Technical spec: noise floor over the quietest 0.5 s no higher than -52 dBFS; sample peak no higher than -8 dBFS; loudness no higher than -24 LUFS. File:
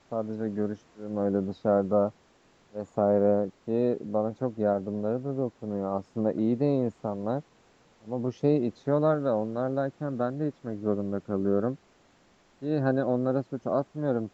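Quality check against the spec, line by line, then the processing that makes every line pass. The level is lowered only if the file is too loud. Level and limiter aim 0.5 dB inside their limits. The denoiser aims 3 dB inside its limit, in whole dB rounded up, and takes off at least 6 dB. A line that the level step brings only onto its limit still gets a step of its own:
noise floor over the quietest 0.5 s -62 dBFS: OK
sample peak -11.5 dBFS: OK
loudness -28.5 LUFS: OK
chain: none

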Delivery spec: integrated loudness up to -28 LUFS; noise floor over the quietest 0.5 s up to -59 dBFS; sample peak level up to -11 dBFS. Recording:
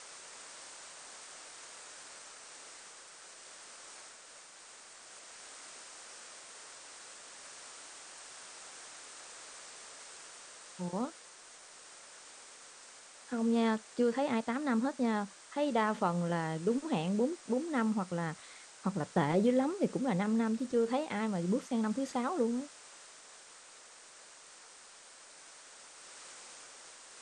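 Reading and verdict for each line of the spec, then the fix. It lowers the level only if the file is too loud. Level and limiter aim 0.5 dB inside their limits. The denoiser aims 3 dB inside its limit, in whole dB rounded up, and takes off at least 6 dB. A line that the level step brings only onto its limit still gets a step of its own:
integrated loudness -33.0 LUFS: OK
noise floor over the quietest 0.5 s -55 dBFS: fail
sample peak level -16.5 dBFS: OK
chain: denoiser 7 dB, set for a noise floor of -55 dBFS

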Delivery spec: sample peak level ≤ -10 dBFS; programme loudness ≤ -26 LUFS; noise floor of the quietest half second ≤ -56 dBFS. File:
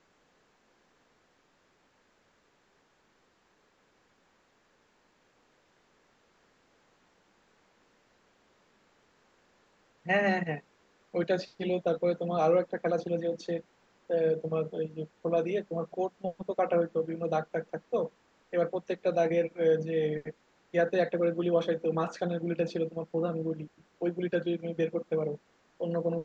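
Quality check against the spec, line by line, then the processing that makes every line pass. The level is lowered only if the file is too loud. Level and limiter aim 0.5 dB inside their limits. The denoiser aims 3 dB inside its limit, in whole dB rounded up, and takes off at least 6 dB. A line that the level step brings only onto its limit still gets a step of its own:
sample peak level -14.0 dBFS: OK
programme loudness -31.0 LUFS: OK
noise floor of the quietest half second -69 dBFS: OK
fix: none

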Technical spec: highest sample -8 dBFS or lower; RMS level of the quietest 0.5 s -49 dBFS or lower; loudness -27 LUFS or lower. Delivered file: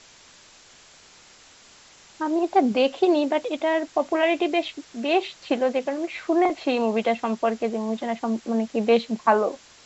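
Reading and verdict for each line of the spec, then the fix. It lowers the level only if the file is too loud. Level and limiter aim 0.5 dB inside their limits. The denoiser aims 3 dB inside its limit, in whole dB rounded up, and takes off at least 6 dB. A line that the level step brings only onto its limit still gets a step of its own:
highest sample -5.5 dBFS: fail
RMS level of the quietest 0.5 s -51 dBFS: OK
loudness -24.0 LUFS: fail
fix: gain -3.5 dB

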